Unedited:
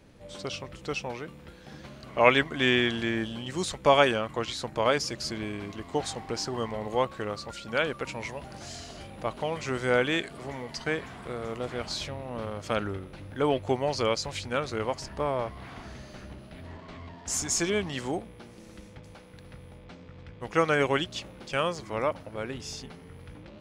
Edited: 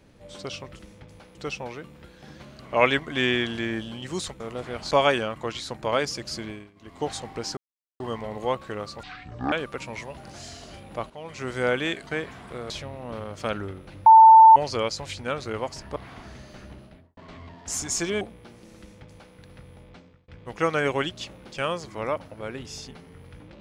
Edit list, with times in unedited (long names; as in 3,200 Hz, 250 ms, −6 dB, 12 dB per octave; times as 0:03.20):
0:05.36–0:05.96: duck −21 dB, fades 0.28 s
0:06.50: splice in silence 0.43 s
0:07.53–0:07.79: play speed 53%
0:09.37–0:09.81: fade in, from −15.5 dB
0:10.34–0:10.82: remove
0:11.45–0:11.96: move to 0:03.84
0:13.32–0:13.82: beep over 891 Hz −7 dBFS
0:15.22–0:15.56: remove
0:16.38–0:16.77: fade out and dull
0:17.81–0:18.16: remove
0:18.74–0:19.30: duplicate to 0:00.79
0:19.86–0:20.23: fade out